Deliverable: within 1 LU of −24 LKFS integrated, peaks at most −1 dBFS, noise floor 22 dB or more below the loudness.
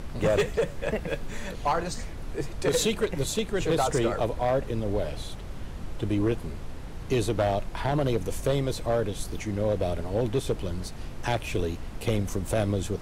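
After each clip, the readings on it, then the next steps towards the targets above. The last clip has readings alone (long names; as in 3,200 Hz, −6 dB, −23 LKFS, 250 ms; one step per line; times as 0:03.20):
share of clipped samples 1.1%; peaks flattened at −18.0 dBFS; background noise floor −38 dBFS; target noise floor −51 dBFS; integrated loudness −28.5 LKFS; sample peak −18.0 dBFS; target loudness −24.0 LKFS
→ clipped peaks rebuilt −18 dBFS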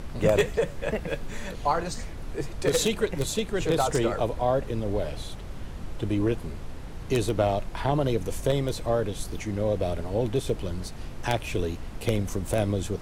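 share of clipped samples 0.0%; background noise floor −38 dBFS; target noise floor −50 dBFS
→ noise reduction from a noise print 12 dB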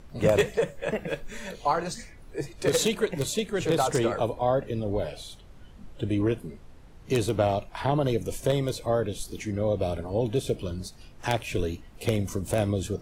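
background noise floor −49 dBFS; target noise floor −50 dBFS
→ noise reduction from a noise print 6 dB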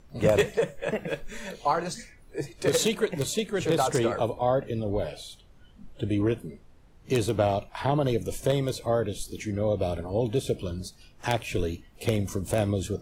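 background noise floor −54 dBFS; integrated loudness −28.0 LKFS; sample peak −8.5 dBFS; target loudness −24.0 LKFS
→ level +4 dB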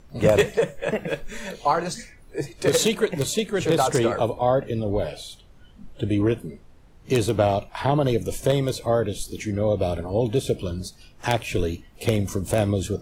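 integrated loudness −24.0 LKFS; sample peak −4.5 dBFS; background noise floor −50 dBFS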